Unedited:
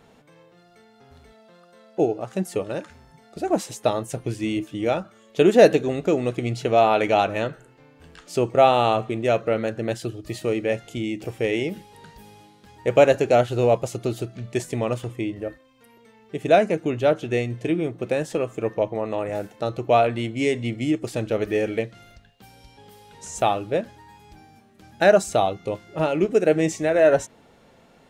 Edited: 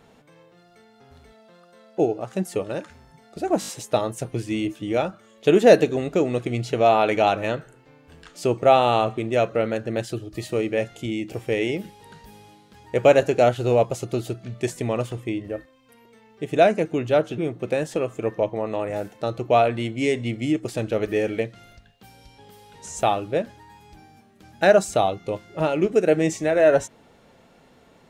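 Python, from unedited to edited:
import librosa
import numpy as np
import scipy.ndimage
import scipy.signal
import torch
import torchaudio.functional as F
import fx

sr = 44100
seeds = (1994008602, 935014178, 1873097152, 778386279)

y = fx.edit(x, sr, fx.stutter(start_s=3.6, slice_s=0.02, count=5),
    fx.cut(start_s=17.3, length_s=0.47), tone=tone)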